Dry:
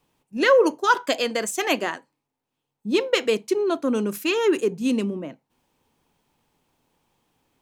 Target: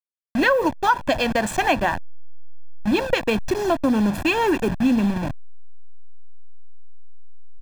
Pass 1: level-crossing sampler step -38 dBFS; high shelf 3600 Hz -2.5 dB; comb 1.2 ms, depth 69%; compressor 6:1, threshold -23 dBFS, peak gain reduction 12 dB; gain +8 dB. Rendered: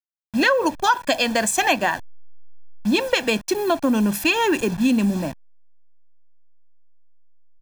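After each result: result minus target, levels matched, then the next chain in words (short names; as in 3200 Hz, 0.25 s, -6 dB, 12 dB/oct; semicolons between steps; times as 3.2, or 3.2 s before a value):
8000 Hz band +8.0 dB; level-crossing sampler: distortion -10 dB
level-crossing sampler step -38 dBFS; high shelf 3600 Hz -14.5 dB; comb 1.2 ms, depth 69%; compressor 6:1, threshold -23 dBFS, peak gain reduction 11 dB; gain +8 dB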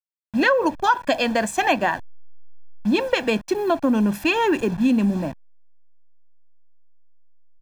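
level-crossing sampler: distortion -10 dB
level-crossing sampler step -28.5 dBFS; high shelf 3600 Hz -14.5 dB; comb 1.2 ms, depth 69%; compressor 6:1, threshold -23 dBFS, peak gain reduction 10.5 dB; gain +8 dB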